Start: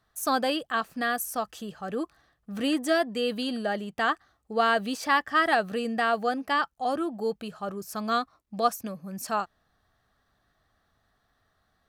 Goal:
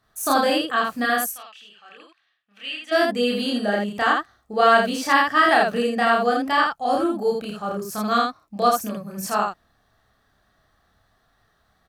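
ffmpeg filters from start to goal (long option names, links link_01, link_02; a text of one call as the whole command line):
ffmpeg -i in.wav -filter_complex "[0:a]asplit=3[link_01][link_02][link_03];[link_01]afade=type=out:start_time=1.28:duration=0.02[link_04];[link_02]bandpass=frequency=2700:width_type=q:width=3:csg=0,afade=type=in:start_time=1.28:duration=0.02,afade=type=out:start_time=2.91:duration=0.02[link_05];[link_03]afade=type=in:start_time=2.91:duration=0.02[link_06];[link_04][link_05][link_06]amix=inputs=3:normalize=0,aecho=1:1:29.15|81.63:1|0.794,volume=2.5dB" out.wav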